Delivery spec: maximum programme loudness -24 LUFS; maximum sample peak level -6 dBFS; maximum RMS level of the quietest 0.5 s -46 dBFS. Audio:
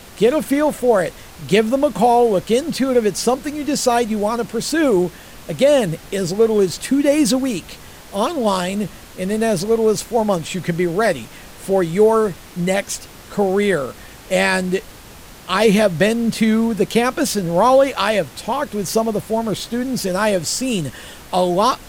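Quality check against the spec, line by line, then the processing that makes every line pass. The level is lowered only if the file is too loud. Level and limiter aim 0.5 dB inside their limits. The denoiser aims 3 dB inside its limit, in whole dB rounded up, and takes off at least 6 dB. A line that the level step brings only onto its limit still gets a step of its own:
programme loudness -18.0 LUFS: fail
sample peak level -4.0 dBFS: fail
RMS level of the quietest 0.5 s -40 dBFS: fail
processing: gain -6.5 dB

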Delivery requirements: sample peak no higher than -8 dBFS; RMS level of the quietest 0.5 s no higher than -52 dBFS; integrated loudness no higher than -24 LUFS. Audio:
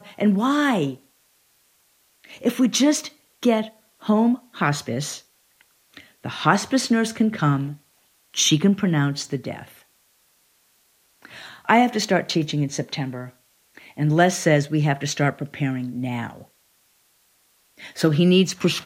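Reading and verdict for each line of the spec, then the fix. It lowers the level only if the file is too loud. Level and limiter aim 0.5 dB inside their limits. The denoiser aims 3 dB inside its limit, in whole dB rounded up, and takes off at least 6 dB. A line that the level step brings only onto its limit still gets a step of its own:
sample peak -2.0 dBFS: fail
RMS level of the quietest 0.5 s -62 dBFS: OK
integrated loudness -21.5 LUFS: fail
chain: gain -3 dB; limiter -8.5 dBFS

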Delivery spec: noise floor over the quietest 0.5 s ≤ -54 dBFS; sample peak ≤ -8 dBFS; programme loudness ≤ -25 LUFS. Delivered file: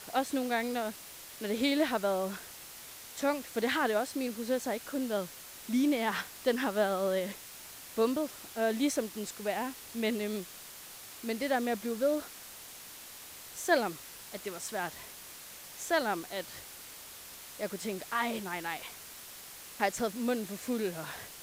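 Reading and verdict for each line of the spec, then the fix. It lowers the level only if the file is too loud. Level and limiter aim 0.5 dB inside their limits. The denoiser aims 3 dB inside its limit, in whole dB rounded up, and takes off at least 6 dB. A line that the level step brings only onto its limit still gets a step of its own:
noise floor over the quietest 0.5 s -48 dBFS: fail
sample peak -14.0 dBFS: OK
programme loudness -33.0 LUFS: OK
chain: denoiser 9 dB, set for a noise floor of -48 dBFS

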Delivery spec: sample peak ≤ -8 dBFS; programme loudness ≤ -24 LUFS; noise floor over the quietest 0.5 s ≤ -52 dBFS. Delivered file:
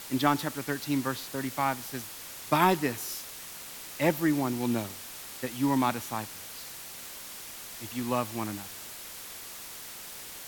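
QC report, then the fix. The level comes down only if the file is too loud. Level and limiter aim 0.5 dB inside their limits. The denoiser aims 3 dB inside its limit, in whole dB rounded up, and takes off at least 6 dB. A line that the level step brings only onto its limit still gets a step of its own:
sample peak -9.5 dBFS: OK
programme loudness -31.5 LUFS: OK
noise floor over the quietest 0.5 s -43 dBFS: fail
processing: denoiser 12 dB, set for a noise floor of -43 dBFS

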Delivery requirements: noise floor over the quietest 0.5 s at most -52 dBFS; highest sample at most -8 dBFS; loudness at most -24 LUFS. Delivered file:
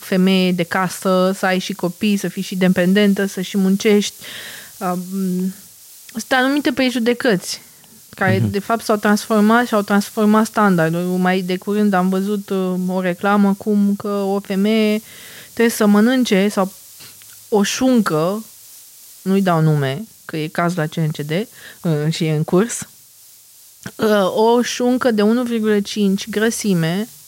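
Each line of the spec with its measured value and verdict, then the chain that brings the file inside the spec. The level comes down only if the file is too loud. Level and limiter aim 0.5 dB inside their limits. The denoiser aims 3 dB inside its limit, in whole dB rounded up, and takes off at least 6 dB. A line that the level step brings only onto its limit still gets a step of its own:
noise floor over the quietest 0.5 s -45 dBFS: fail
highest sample -5.0 dBFS: fail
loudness -17.5 LUFS: fail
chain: denoiser 6 dB, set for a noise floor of -45 dBFS; gain -7 dB

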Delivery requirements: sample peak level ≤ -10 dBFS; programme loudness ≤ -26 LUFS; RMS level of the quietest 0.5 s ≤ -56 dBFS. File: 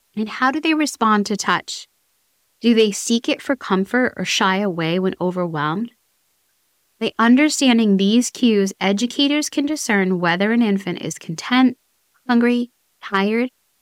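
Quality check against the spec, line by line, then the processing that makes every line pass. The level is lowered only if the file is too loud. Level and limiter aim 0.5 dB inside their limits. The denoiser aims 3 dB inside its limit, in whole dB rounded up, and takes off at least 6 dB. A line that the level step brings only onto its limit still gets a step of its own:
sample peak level -5.5 dBFS: fail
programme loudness -18.5 LUFS: fail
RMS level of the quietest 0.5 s -65 dBFS: OK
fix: gain -8 dB

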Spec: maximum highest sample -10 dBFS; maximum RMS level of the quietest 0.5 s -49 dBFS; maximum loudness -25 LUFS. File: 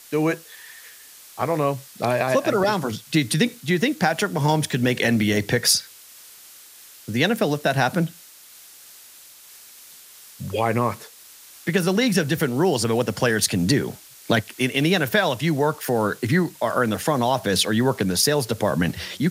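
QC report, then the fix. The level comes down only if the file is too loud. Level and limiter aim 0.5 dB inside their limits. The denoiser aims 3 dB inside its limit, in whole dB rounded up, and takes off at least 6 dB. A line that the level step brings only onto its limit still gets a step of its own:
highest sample -3.5 dBFS: fail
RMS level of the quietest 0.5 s -47 dBFS: fail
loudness -22.0 LUFS: fail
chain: gain -3.5 dB; limiter -10.5 dBFS

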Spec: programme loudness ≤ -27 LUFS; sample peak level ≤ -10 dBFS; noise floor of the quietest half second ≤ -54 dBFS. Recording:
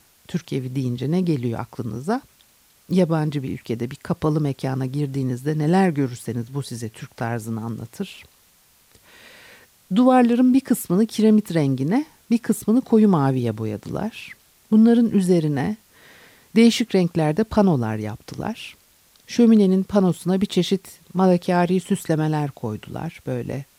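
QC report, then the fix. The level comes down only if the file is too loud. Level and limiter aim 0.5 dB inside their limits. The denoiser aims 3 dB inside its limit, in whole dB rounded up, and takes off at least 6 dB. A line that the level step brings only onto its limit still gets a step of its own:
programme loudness -21.0 LUFS: fail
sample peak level -5.0 dBFS: fail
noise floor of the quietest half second -57 dBFS: OK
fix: gain -6.5 dB

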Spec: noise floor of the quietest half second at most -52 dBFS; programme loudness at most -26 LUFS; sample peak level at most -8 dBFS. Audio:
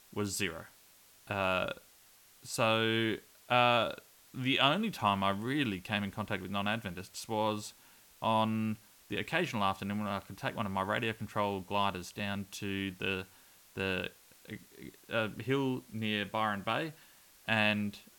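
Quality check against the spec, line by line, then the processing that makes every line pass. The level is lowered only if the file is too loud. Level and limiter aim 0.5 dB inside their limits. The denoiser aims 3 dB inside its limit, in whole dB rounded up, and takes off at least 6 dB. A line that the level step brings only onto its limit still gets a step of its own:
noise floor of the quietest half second -61 dBFS: OK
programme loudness -33.5 LUFS: OK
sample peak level -12.0 dBFS: OK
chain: none

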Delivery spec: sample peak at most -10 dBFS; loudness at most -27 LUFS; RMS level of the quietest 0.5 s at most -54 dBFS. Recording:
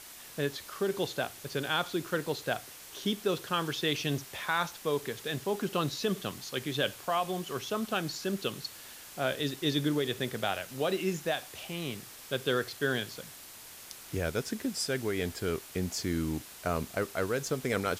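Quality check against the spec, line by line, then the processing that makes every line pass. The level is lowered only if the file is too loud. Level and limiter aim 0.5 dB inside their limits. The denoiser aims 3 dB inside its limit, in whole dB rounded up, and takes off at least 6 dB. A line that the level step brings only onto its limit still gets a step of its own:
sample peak -15.5 dBFS: OK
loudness -33.0 LUFS: OK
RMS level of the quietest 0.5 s -49 dBFS: fail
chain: denoiser 8 dB, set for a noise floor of -49 dBFS

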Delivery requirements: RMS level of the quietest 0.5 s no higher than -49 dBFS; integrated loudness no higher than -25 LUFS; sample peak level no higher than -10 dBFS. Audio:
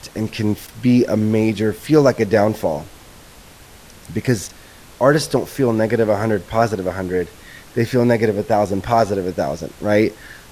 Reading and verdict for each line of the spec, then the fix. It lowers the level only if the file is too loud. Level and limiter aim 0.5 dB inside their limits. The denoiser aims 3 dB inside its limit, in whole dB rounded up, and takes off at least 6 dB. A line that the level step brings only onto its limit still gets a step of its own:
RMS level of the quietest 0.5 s -43 dBFS: fail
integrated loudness -18.5 LUFS: fail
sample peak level -2.0 dBFS: fail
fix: gain -7 dB; limiter -10.5 dBFS

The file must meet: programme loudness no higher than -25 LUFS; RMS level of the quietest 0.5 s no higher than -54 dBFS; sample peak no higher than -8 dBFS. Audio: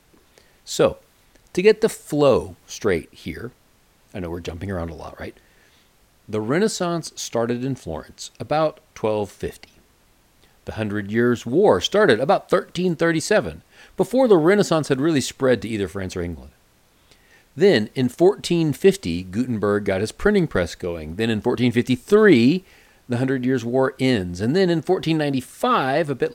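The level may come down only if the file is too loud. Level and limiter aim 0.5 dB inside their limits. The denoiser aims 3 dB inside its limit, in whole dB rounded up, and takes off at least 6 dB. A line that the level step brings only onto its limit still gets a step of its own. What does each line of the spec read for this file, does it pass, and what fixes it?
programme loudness -20.5 LUFS: fail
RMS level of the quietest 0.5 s -58 dBFS: OK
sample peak -2.0 dBFS: fail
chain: gain -5 dB; limiter -8.5 dBFS

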